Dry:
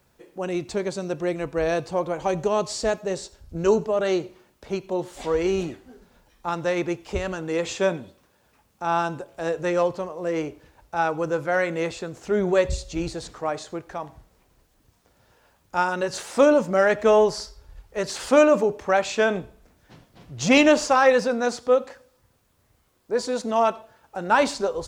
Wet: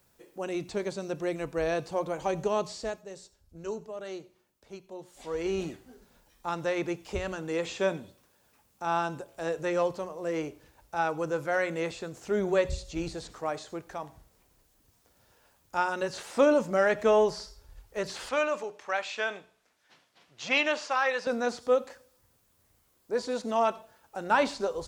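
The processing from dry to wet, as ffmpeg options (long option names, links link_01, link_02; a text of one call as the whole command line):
ffmpeg -i in.wav -filter_complex "[0:a]asettb=1/sr,asplit=3[link_01][link_02][link_03];[link_01]atrim=end=18.294[link_04];[link_02]atrim=start=18.29:end=21.27,asetpts=PTS-STARTPTS,afade=type=in:duration=0.004:curve=qsin,afade=type=out:start_time=2.976:duration=0.004:curve=qsin,bandpass=frequency=2400:width_type=q:width=0.55[link_05];[link_03]atrim=start=21.266[link_06];[link_04][link_05]acrossfade=duration=0.004:curve1=hsin:curve2=qsin[link_07];[link_07][link_06]acrossfade=duration=0.004:curve1=qsin:curve2=hsin,asplit=3[link_08][link_09][link_10];[link_08]atrim=end=3.05,asetpts=PTS-STARTPTS,afade=type=out:start_time=2.59:duration=0.46:silence=0.281838[link_11];[link_09]atrim=start=3.05:end=5.16,asetpts=PTS-STARTPTS,volume=-11dB[link_12];[link_10]atrim=start=5.16,asetpts=PTS-STARTPTS,afade=type=in:duration=0.46:silence=0.281838[link_13];[link_11][link_12][link_13]concat=n=3:v=0:a=1,acrossover=split=4300[link_14][link_15];[link_15]acompressor=threshold=-48dB:ratio=4:attack=1:release=60[link_16];[link_14][link_16]amix=inputs=2:normalize=0,highshelf=frequency=5300:gain=8.5,bandreject=frequency=60:width_type=h:width=6,bandreject=frequency=120:width_type=h:width=6,bandreject=frequency=180:width_type=h:width=6,volume=-5.5dB" out.wav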